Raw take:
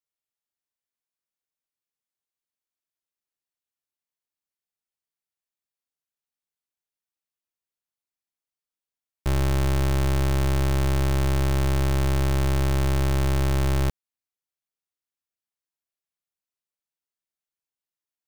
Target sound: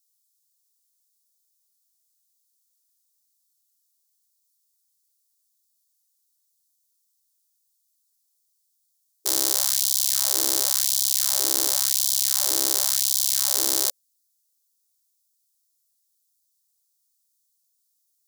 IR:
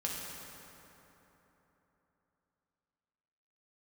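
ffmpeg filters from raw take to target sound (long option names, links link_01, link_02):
-af "aexciter=amount=13.4:drive=4.5:freq=3800,afftfilt=real='re*gte(b*sr/1024,250*pow(3100/250,0.5+0.5*sin(2*PI*0.93*pts/sr)))':imag='im*gte(b*sr/1024,250*pow(3100/250,0.5+0.5*sin(2*PI*0.93*pts/sr)))':win_size=1024:overlap=0.75,volume=-3.5dB"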